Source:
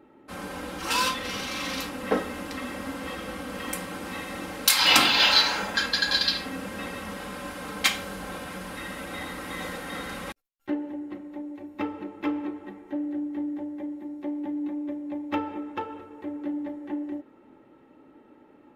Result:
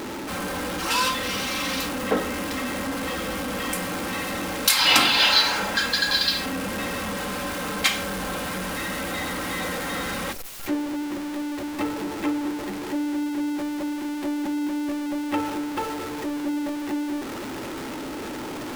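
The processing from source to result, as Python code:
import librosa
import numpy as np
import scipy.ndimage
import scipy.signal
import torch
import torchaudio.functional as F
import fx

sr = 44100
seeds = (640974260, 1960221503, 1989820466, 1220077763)

y = x + 0.5 * 10.0 ** (-27.5 / 20.0) * np.sign(x)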